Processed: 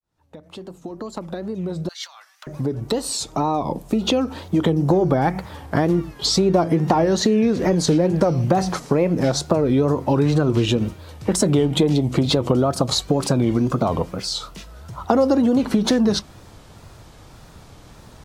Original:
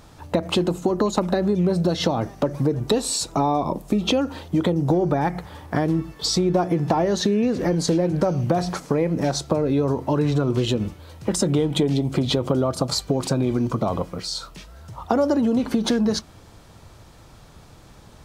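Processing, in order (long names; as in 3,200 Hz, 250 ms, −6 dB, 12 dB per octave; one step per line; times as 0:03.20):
fade in at the beginning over 5.13 s
0:01.88–0:02.47: high-pass filter 1,400 Hz 24 dB per octave
tape wow and flutter 120 cents
level +3 dB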